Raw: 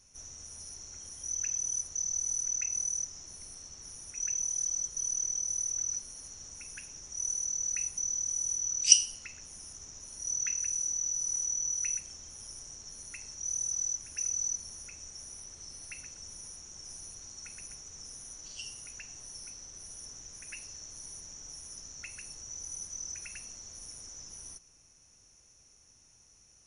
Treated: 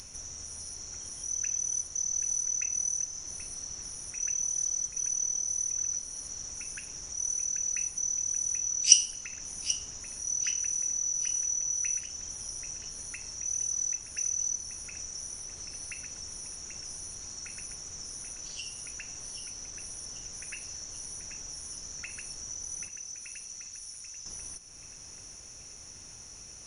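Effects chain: 22.88–24.26 s: amplifier tone stack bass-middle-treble 5-5-5; upward compressor, threshold -37 dBFS; tape echo 784 ms, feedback 62%, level -8.5 dB, low-pass 5 kHz; trim +1.5 dB

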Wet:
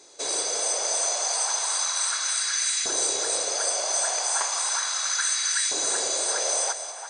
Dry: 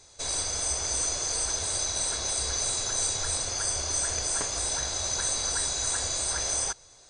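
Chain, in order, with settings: two-band feedback delay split 2.7 kHz, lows 343 ms, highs 191 ms, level -10 dB; LFO high-pass saw up 0.35 Hz 320–2000 Hz; trim +2.5 dB

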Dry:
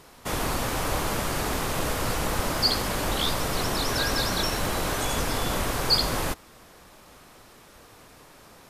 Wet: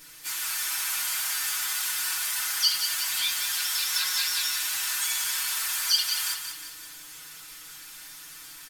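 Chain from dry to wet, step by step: level rider gain up to 3.5 dB; high-pass 1.5 kHz 24 dB/octave; compression 1.5:1, threshold -47 dBFS, peak gain reduction 12 dB; added noise brown -52 dBFS; harmony voices -7 st -4 dB, +4 st -8 dB; tilt EQ +3.5 dB/octave; comb 6.2 ms, depth 74%; feedback delay 180 ms, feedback 51%, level -7.5 dB; FDN reverb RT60 0.3 s, low-frequency decay 1.2×, high-frequency decay 0.5×, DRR -2 dB; trim -7 dB

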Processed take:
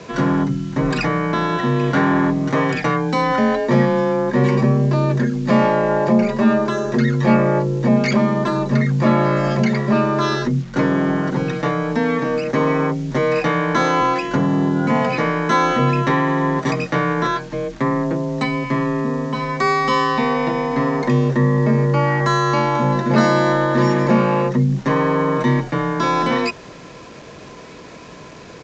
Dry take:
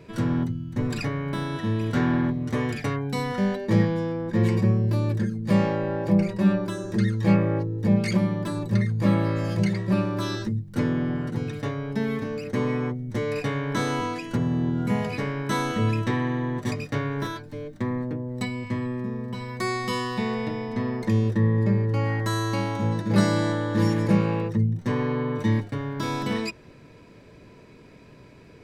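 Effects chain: peaking EQ 1 kHz +9 dB 2.2 oct; in parallel at +2.5 dB: peak limiter -19 dBFS, peak gain reduction 14.5 dB; on the sum: frequency shift +28 Hz; bit crusher 7-bit; resampled via 16 kHz

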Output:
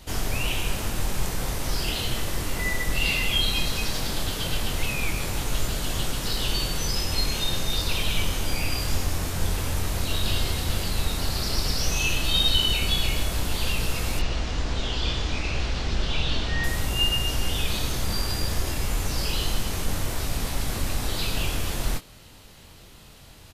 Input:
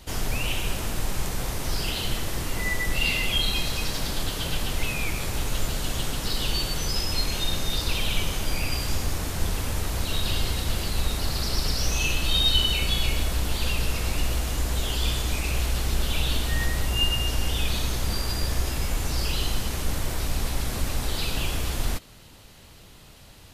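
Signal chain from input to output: 14.19–16.64 s: low-pass 5.7 kHz 24 dB/octave; doubling 23 ms -7 dB

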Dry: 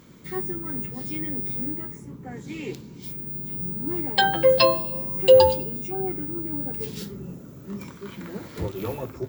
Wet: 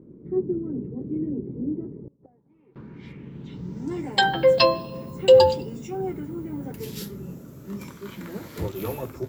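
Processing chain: 1.97–2.76 s: inverted gate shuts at -32 dBFS, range -26 dB; low-pass sweep 380 Hz -> 13 kHz, 1.91–4.32 s

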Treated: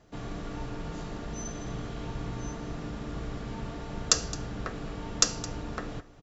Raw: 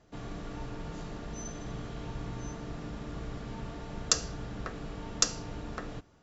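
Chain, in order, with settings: delay 216 ms -17.5 dB; trim +3 dB

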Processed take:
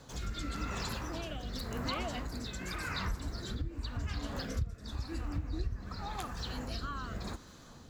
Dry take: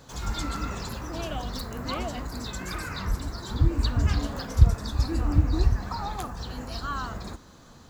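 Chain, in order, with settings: dynamic bell 2.5 kHz, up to +5 dB, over -46 dBFS, Q 0.72; compression 6:1, threshold -32 dBFS, peak gain reduction 21.5 dB; rotary cabinet horn 0.9 Hz

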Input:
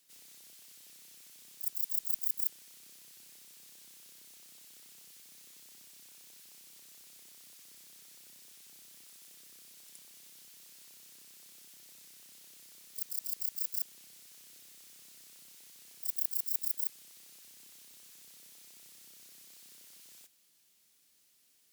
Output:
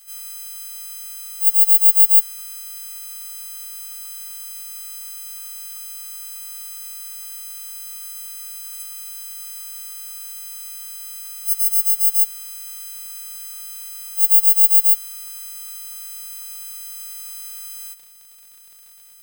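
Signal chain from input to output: partials quantised in pitch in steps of 4 st; peaking EQ 1.1 kHz +12 dB 0.31 oct; crackle 55 per s -45 dBFS; tape speed +13%; trim +7 dB

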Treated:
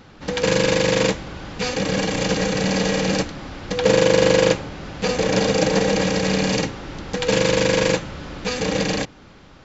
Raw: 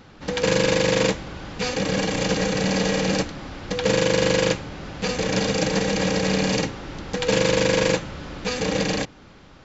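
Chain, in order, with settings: 3.76–6.02 s: dynamic bell 550 Hz, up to +4 dB, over -31 dBFS, Q 0.71; trim +1.5 dB

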